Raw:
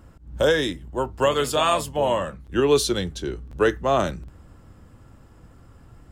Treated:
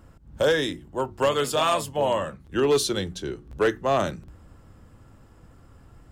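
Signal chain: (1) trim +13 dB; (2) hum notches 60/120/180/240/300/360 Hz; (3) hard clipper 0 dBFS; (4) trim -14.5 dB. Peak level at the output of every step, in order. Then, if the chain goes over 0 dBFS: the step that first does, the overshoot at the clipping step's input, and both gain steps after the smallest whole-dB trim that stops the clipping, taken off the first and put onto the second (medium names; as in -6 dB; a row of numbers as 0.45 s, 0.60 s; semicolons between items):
+5.5 dBFS, +5.5 dBFS, 0.0 dBFS, -14.5 dBFS; step 1, 5.5 dB; step 1 +7 dB, step 4 -8.5 dB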